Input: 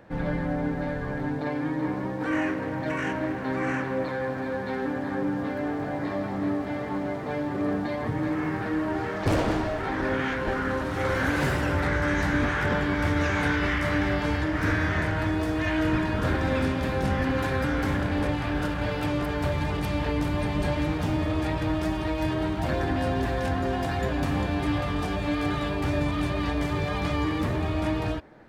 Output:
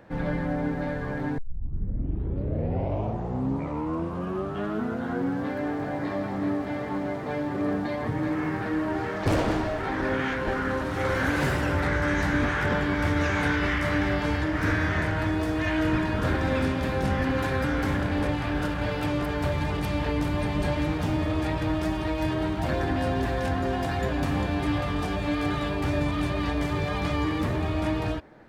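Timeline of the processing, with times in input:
1.38 tape start 4.15 s

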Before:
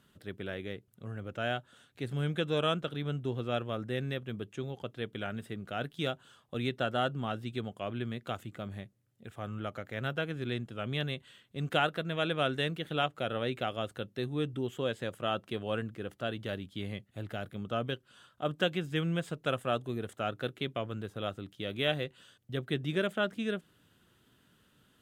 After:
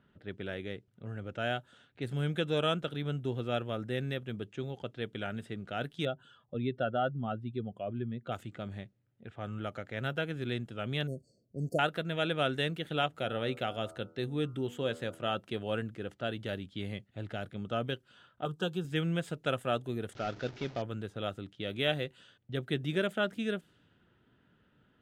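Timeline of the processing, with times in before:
6.05–8.32 spectral contrast raised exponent 1.6
11.07–11.79 brick-wall FIR band-stop 710–4300 Hz
13.08–15.36 de-hum 81.47 Hz, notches 18
18.45–18.85 fixed phaser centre 410 Hz, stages 8
20.15–20.82 delta modulation 32 kbps, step -44 dBFS
whole clip: notch 1100 Hz, Q 9.2; low-pass opened by the level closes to 2000 Hz, open at -32.5 dBFS

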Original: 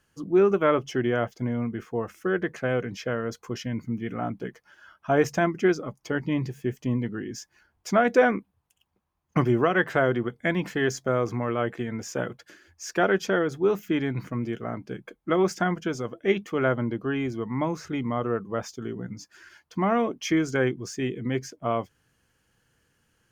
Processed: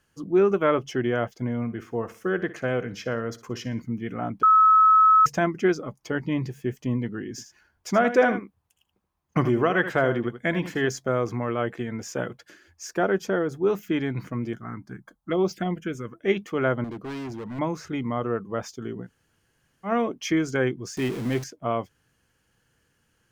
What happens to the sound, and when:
1.56–3.82 feedback echo 60 ms, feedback 37%, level -16 dB
4.43–5.26 bleep 1290 Hz -12.5 dBFS
7.3–10.87 echo 79 ms -11 dB
12.87–13.67 bell 3000 Hz -7 dB 2 oct
14.53–16.2 envelope phaser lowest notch 340 Hz, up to 1800 Hz, full sweep at -19 dBFS
16.84–17.59 hard clip -31.5 dBFS
19.05–19.88 room tone, crossfade 0.10 s
20.97–21.44 zero-crossing step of -32 dBFS

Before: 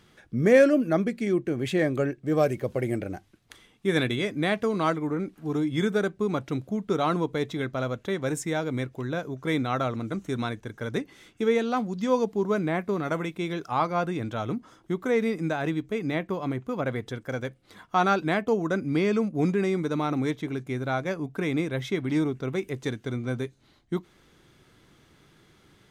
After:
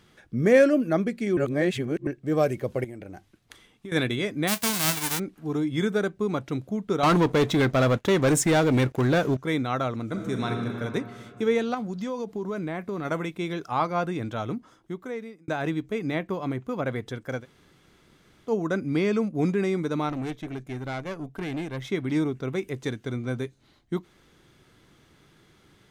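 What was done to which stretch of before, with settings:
1.37–2.07 reverse
2.84–3.92 compressor 10:1, threshold -35 dBFS
4.47–5.18 spectral whitening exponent 0.1
7.03–9.37 sample leveller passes 3
10.03–10.72 reverb throw, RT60 2.8 s, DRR 1.5 dB
11.74–13.05 compressor, threshold -27 dBFS
14.4–15.48 fade out linear
17.41–18.49 room tone, crossfade 0.10 s
20.09–21.9 tube stage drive 26 dB, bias 0.6

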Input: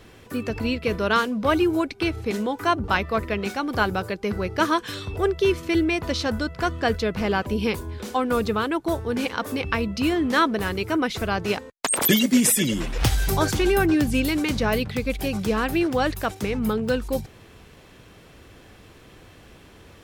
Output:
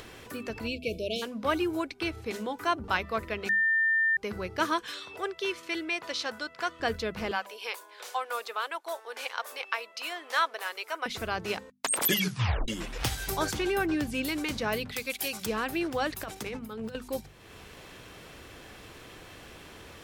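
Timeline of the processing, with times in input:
0.68–1.22 spectral delete 690–2200 Hz
3.49–4.17 bleep 1800 Hz -16.5 dBFS
4.87–6.8 weighting filter A
7.31–11.06 HPF 570 Hz 24 dB/oct
12.12 tape stop 0.56 s
13.53–14.23 high shelf 6500 Hz -6 dB
14.92–15.46 tilt +3 dB/oct
16.13–16.95 negative-ratio compressor -27 dBFS, ratio -0.5
whole clip: low shelf 460 Hz -6 dB; notches 50/100/150/200/250 Hz; upward compressor, threshold -33 dBFS; gain -5 dB

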